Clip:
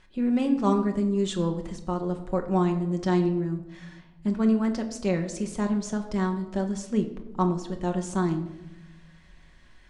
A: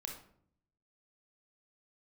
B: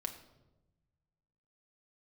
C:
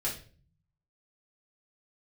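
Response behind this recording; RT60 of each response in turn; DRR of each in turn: B; 0.60, 1.0, 0.40 s; 1.5, 3.5, -6.0 dB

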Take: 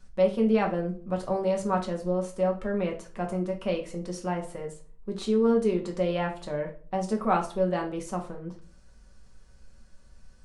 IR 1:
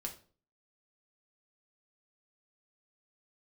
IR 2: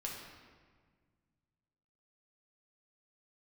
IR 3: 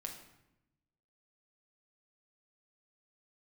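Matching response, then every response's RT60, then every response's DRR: 1; 0.40, 1.6, 0.90 s; 1.5, -3.0, 1.0 dB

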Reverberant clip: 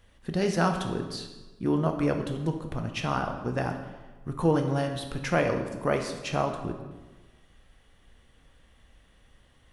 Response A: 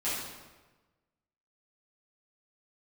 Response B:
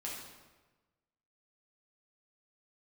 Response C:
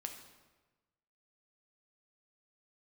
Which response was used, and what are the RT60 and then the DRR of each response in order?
C; 1.2, 1.2, 1.2 s; -12.5, -5.0, 4.0 dB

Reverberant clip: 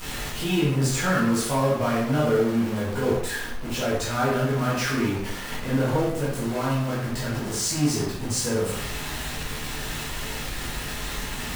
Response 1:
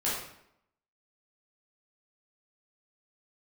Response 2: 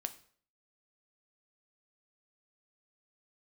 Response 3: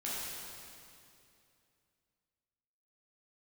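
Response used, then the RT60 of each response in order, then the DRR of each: 1; 0.75, 0.55, 2.6 s; -8.5, 9.0, -8.5 dB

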